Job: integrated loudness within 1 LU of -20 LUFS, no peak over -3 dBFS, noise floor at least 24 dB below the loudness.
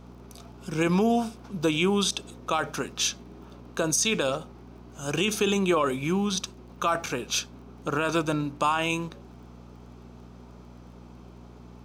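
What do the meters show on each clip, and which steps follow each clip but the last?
ticks 20/s; hum 60 Hz; harmonics up to 240 Hz; hum level -45 dBFS; loudness -27.0 LUFS; peak -12.0 dBFS; loudness target -20.0 LUFS
-> de-click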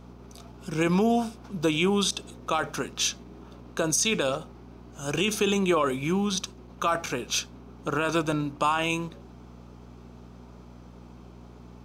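ticks 0.084/s; hum 60 Hz; harmonics up to 240 Hz; hum level -45 dBFS
-> de-hum 60 Hz, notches 4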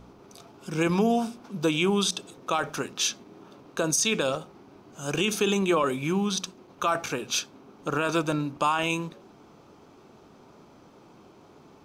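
hum none; loudness -27.0 LUFS; peak -11.5 dBFS; loudness target -20.0 LUFS
-> gain +7 dB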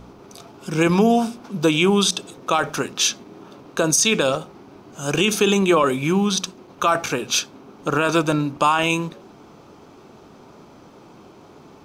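loudness -20.0 LUFS; peak -4.5 dBFS; noise floor -47 dBFS

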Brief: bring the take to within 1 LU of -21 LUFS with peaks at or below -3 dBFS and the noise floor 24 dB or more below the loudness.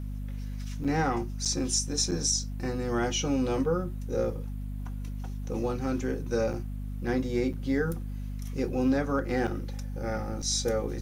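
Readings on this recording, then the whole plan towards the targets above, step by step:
dropouts 7; longest dropout 6.6 ms; hum 50 Hz; harmonics up to 250 Hz; hum level -32 dBFS; loudness -30.0 LUFS; peak -13.5 dBFS; loudness target -21.0 LUFS
-> interpolate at 0.84/1.45/2.11/6.53/7.53/9.47/10.42, 6.6 ms; de-hum 50 Hz, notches 5; gain +9 dB

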